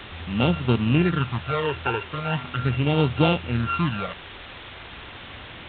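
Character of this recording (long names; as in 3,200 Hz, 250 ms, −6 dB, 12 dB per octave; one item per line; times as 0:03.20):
a buzz of ramps at a fixed pitch in blocks of 32 samples
phaser sweep stages 12, 0.4 Hz, lowest notch 200–1,900 Hz
a quantiser's noise floor 6 bits, dither triangular
mu-law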